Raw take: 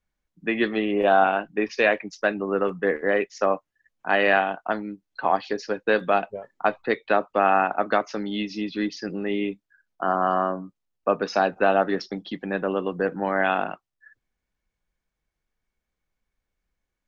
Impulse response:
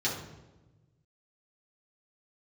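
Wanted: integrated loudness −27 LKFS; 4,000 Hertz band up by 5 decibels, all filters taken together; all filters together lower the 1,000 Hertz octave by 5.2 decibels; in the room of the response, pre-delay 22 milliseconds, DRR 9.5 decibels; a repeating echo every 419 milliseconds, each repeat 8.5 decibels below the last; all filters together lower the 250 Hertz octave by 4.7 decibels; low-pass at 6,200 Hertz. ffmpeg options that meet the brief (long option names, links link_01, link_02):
-filter_complex "[0:a]lowpass=6200,equalizer=frequency=250:width_type=o:gain=-6,equalizer=frequency=1000:width_type=o:gain=-8,equalizer=frequency=4000:width_type=o:gain=8,aecho=1:1:419|838|1257|1676:0.376|0.143|0.0543|0.0206,asplit=2[link_01][link_02];[1:a]atrim=start_sample=2205,adelay=22[link_03];[link_02][link_03]afir=irnorm=-1:irlink=0,volume=-17.5dB[link_04];[link_01][link_04]amix=inputs=2:normalize=0,volume=-0.5dB"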